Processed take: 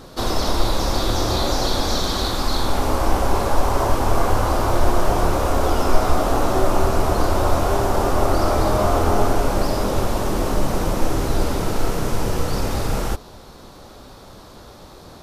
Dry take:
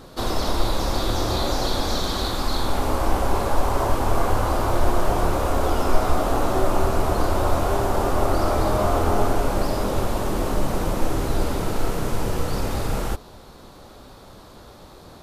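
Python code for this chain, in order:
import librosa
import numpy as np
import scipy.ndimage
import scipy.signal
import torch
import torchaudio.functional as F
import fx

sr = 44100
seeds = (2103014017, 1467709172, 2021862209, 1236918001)

y = fx.peak_eq(x, sr, hz=5600.0, db=3.5, octaves=0.45)
y = F.gain(torch.from_numpy(y), 2.5).numpy()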